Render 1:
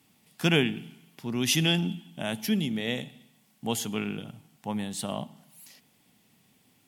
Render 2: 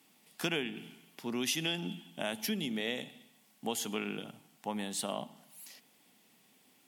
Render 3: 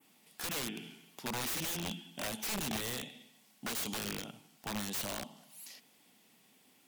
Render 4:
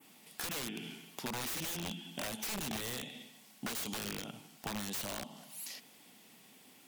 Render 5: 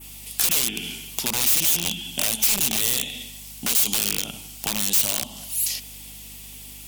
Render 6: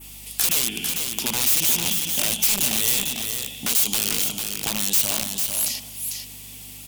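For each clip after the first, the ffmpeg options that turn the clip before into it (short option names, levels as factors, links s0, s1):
-af "highpass=260,acompressor=threshold=0.0282:ratio=4"
-af "adynamicequalizer=threshold=0.00251:dfrequency=4900:dqfactor=0.9:tfrequency=4900:tqfactor=0.9:attack=5:release=100:ratio=0.375:range=3:mode=boostabove:tftype=bell,aeval=exprs='(mod(35.5*val(0)+1,2)-1)/35.5':c=same"
-af "acompressor=threshold=0.00631:ratio=4,volume=2"
-af "aexciter=amount=3.3:drive=4.2:freq=2400,aeval=exprs='val(0)+0.002*(sin(2*PI*50*n/s)+sin(2*PI*2*50*n/s)/2+sin(2*PI*3*50*n/s)/3+sin(2*PI*4*50*n/s)/4+sin(2*PI*5*50*n/s)/5)':c=same,volume=2.37"
-af "aecho=1:1:448:0.531"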